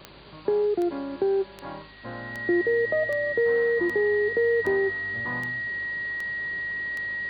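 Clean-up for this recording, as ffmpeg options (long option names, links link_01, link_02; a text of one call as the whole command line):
ffmpeg -i in.wav -af "adeclick=threshold=4,bandreject=frequency=51.9:width_type=h:width=4,bandreject=frequency=103.8:width_type=h:width=4,bandreject=frequency=155.7:width_type=h:width=4,bandreject=frequency=207.6:width_type=h:width=4,bandreject=frequency=259.5:width_type=h:width=4,bandreject=frequency=1900:width=30,afwtdn=0.005" out.wav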